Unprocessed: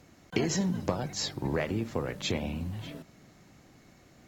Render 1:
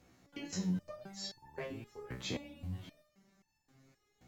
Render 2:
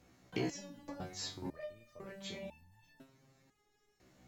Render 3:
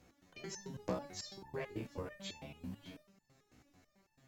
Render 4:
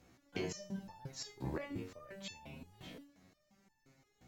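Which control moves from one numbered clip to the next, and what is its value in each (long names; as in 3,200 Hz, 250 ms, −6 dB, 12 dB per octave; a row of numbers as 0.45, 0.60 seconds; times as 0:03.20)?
step-sequenced resonator, speed: 3.8, 2, 9.1, 5.7 Hertz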